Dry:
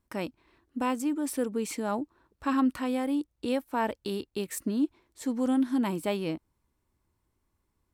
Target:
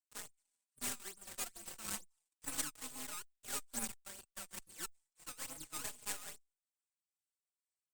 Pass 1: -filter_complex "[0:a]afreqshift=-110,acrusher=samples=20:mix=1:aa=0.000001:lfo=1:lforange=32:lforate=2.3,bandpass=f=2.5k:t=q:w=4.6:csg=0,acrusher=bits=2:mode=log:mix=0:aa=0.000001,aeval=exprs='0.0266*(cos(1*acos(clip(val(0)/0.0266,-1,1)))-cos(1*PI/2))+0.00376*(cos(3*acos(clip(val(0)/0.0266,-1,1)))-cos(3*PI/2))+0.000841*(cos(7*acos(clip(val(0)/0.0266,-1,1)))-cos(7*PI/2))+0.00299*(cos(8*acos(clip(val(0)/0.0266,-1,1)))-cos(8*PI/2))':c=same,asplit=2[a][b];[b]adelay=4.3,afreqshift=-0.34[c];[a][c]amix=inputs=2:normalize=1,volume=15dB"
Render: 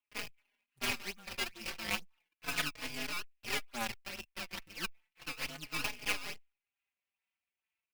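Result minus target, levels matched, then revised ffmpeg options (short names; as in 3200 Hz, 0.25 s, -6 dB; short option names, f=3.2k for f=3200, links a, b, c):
8000 Hz band -8.5 dB
-filter_complex "[0:a]afreqshift=-110,acrusher=samples=20:mix=1:aa=0.000001:lfo=1:lforange=32:lforate=2.3,bandpass=f=8.3k:t=q:w=4.6:csg=0,acrusher=bits=2:mode=log:mix=0:aa=0.000001,aeval=exprs='0.0266*(cos(1*acos(clip(val(0)/0.0266,-1,1)))-cos(1*PI/2))+0.00376*(cos(3*acos(clip(val(0)/0.0266,-1,1)))-cos(3*PI/2))+0.000841*(cos(7*acos(clip(val(0)/0.0266,-1,1)))-cos(7*PI/2))+0.00299*(cos(8*acos(clip(val(0)/0.0266,-1,1)))-cos(8*PI/2))':c=same,asplit=2[a][b];[b]adelay=4.3,afreqshift=-0.34[c];[a][c]amix=inputs=2:normalize=1,volume=15dB"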